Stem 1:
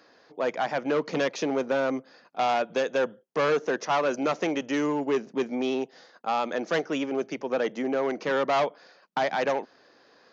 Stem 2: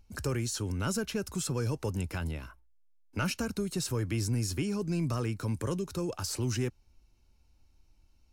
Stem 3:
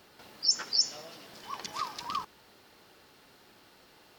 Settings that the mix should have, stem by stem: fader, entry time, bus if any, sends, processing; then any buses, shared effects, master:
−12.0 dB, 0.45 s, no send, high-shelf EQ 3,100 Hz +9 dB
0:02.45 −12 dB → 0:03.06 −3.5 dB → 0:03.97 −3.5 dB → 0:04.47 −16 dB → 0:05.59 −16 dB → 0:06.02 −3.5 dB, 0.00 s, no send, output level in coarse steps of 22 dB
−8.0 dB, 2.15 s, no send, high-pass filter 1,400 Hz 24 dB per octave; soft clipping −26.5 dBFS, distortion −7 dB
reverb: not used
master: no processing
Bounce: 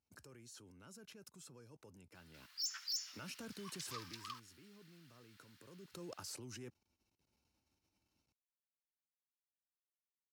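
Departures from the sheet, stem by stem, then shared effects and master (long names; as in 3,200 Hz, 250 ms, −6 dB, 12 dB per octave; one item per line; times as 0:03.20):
stem 1: muted
master: extra high-pass filter 150 Hz 12 dB per octave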